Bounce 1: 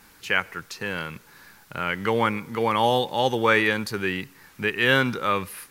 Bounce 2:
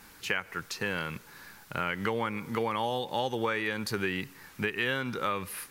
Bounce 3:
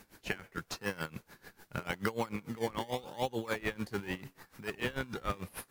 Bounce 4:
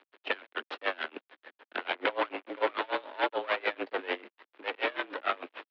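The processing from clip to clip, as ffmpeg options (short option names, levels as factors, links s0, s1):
-af "acompressor=threshold=0.0501:ratio=12"
-filter_complex "[0:a]asplit=2[s0][s1];[s1]acrusher=samples=24:mix=1:aa=0.000001:lfo=1:lforange=24:lforate=0.82,volume=0.668[s2];[s0][s2]amix=inputs=2:normalize=0,aeval=exprs='val(0)*pow(10,-20*(0.5-0.5*cos(2*PI*6.8*n/s))/20)':c=same,volume=0.708"
-af "aeval=exprs='0.178*(cos(1*acos(clip(val(0)/0.178,-1,1)))-cos(1*PI/2))+0.0562*(cos(8*acos(clip(val(0)/0.178,-1,1)))-cos(8*PI/2))':c=same,acrusher=bits=7:mix=0:aa=0.5,highpass=f=240:t=q:w=0.5412,highpass=f=240:t=q:w=1.307,lowpass=f=3400:t=q:w=0.5176,lowpass=f=3400:t=q:w=0.7071,lowpass=f=3400:t=q:w=1.932,afreqshift=76,volume=1.41"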